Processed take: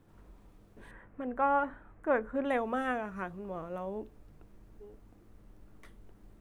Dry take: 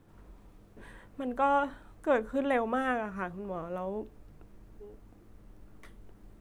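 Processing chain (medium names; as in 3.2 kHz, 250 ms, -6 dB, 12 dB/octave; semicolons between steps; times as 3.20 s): 0.91–2.45 s: resonant high shelf 2.8 kHz -12.5 dB, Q 1.5; trim -2.5 dB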